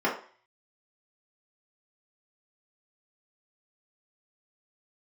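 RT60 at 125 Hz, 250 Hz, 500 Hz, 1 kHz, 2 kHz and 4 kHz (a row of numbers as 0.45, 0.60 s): 0.35, 0.35, 0.40, 0.45, 0.45, 0.45 s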